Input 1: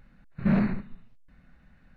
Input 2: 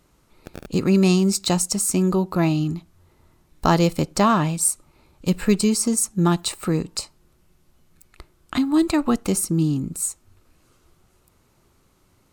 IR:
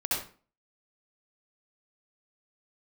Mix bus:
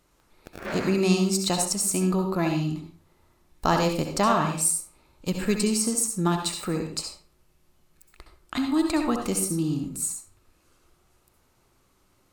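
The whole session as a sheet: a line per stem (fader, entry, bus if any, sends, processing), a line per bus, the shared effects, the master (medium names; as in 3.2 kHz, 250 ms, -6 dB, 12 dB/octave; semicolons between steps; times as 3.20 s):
+2.0 dB, 0.20 s, no send, local Wiener filter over 9 samples; high-pass 380 Hz 24 dB/octave; waveshaping leveller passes 3; auto duck -9 dB, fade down 1.05 s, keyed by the second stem
-6.0 dB, 0.00 s, send -8.5 dB, peaking EQ 120 Hz -5 dB 2.7 oct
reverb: on, RT60 0.40 s, pre-delay 61 ms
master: none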